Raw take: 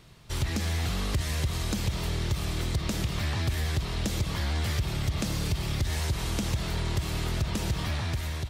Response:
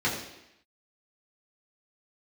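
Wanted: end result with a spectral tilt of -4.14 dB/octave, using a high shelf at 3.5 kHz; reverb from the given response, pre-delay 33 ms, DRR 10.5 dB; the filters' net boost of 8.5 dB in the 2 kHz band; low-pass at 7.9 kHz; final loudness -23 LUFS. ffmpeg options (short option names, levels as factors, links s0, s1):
-filter_complex "[0:a]lowpass=7900,equalizer=f=2000:t=o:g=9,highshelf=f=3500:g=4,asplit=2[s0][s1];[1:a]atrim=start_sample=2205,adelay=33[s2];[s1][s2]afir=irnorm=-1:irlink=0,volume=0.0794[s3];[s0][s3]amix=inputs=2:normalize=0,volume=1.68"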